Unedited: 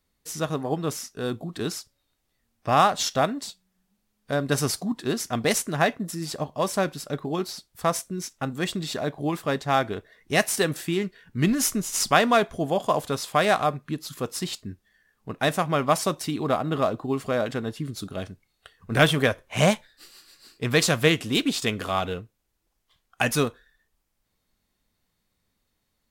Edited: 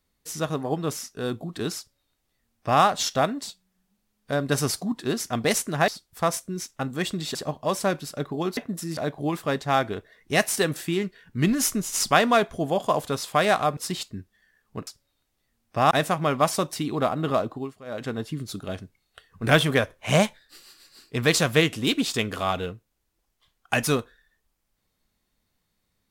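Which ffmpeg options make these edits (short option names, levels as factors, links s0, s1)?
-filter_complex "[0:a]asplit=10[s0][s1][s2][s3][s4][s5][s6][s7][s8][s9];[s0]atrim=end=5.882[s10];[s1]atrim=start=7.498:end=8.972[s11];[s2]atrim=start=6.278:end=7.502[s12];[s3]atrim=start=5.878:end=6.282[s13];[s4]atrim=start=8.968:end=13.772[s14];[s5]atrim=start=14.288:end=15.392[s15];[s6]atrim=start=1.778:end=2.822[s16];[s7]atrim=start=15.388:end=17.22,asetpts=PTS-STARTPTS,afade=t=out:st=1.462:d=0.37:c=qsin:silence=0.125893[s17];[s8]atrim=start=17.22:end=17.33,asetpts=PTS-STARTPTS,volume=0.126[s18];[s9]atrim=start=17.33,asetpts=PTS-STARTPTS,afade=t=in:d=0.37:c=qsin:silence=0.125893[s19];[s10][s11]acrossfade=d=0.004:c1=hsin:c2=hsin[s20];[s20][s12]acrossfade=d=0.004:c1=hsin:c2=hsin[s21];[s21][s13]acrossfade=d=0.004:c1=hsin:c2=hsin[s22];[s22][s14]acrossfade=d=0.004:c1=hsin:c2=hsin[s23];[s23][s15]acrossfade=d=0.004:c1=hsin:c2=hsin[s24];[s24][s16]acrossfade=d=0.004:c1=hsin:c2=hsin[s25];[s17][s18][s19]concat=n=3:v=0:a=1[s26];[s25][s26]acrossfade=d=0.004:c1=hsin:c2=hsin"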